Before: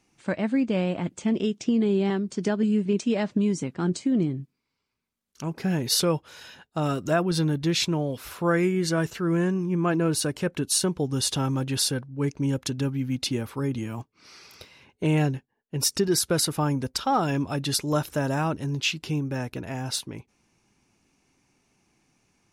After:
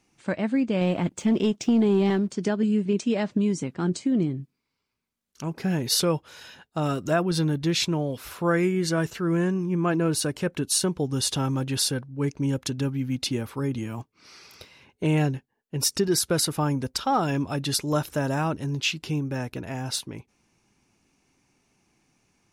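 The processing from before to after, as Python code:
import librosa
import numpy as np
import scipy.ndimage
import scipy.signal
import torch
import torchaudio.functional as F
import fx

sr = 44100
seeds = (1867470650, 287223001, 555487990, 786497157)

y = fx.leveller(x, sr, passes=1, at=(0.81, 2.32))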